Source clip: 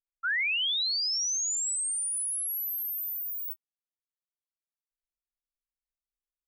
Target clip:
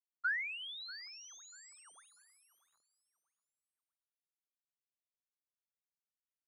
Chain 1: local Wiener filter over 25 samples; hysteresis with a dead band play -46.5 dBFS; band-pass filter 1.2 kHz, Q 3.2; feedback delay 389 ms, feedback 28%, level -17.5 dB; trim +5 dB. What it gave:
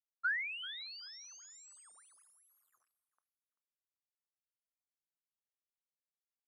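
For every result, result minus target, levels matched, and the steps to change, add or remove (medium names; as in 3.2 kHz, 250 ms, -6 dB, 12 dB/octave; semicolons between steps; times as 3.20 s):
echo 251 ms early; hysteresis with a dead band: distortion -6 dB
change: feedback delay 640 ms, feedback 28%, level -17.5 dB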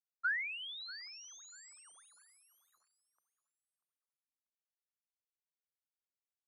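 hysteresis with a dead band: distortion -6 dB
change: hysteresis with a dead band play -40.5 dBFS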